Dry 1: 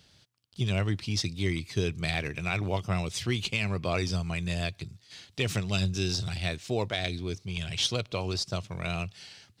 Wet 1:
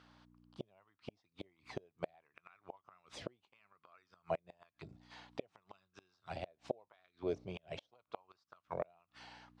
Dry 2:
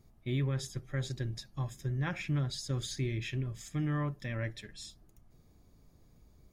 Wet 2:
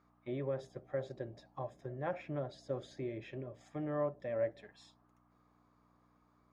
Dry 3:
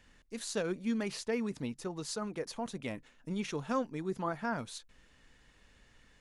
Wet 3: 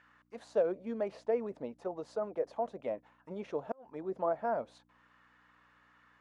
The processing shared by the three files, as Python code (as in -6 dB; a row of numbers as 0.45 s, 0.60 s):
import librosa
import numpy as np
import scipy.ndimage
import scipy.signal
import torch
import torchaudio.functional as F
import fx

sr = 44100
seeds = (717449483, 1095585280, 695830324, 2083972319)

y = fx.add_hum(x, sr, base_hz=60, snr_db=16)
y = fx.gate_flip(y, sr, shuts_db=-21.0, range_db=-35)
y = fx.auto_wah(y, sr, base_hz=600.0, top_hz=1400.0, q=3.5, full_db=-35.5, direction='down')
y = y * librosa.db_to_amplitude(10.5)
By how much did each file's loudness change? -17.0 LU, -5.0 LU, +0.5 LU